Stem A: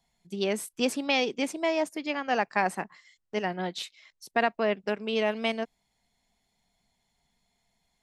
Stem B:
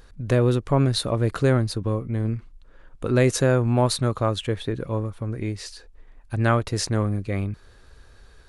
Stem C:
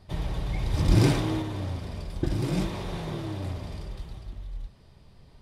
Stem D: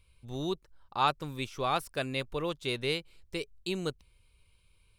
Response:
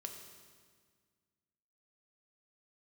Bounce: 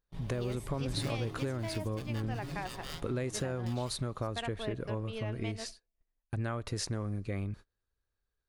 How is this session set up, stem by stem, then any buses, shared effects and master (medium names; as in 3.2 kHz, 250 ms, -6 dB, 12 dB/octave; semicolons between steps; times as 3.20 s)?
-11.5 dB, 0.00 s, send -12 dB, none
-3.5 dB, 0.00 s, send -24 dB, compression, threshold -21 dBFS, peak gain reduction 7.5 dB
-14.5 dB, 0.00 s, send -15 dB, comb 7.3 ms, depth 70%
-2.0 dB, 0.00 s, no send, amplifier tone stack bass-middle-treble 5-5-5; polarity switched at an audio rate 920 Hz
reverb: on, RT60 1.7 s, pre-delay 3 ms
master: gate -41 dBFS, range -33 dB; compression 2:1, threshold -36 dBFS, peak gain reduction 8 dB